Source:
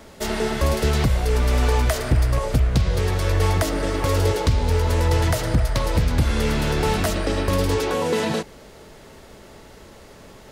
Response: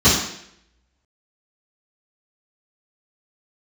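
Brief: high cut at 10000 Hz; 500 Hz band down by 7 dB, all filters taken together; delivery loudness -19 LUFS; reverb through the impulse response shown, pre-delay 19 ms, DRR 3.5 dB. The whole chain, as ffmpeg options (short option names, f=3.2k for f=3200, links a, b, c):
-filter_complex "[0:a]lowpass=10k,equalizer=f=500:t=o:g=-8.5,asplit=2[a][b];[1:a]atrim=start_sample=2205,adelay=19[c];[b][c]afir=irnorm=-1:irlink=0,volume=-26.5dB[d];[a][d]amix=inputs=2:normalize=0,volume=-2.5dB"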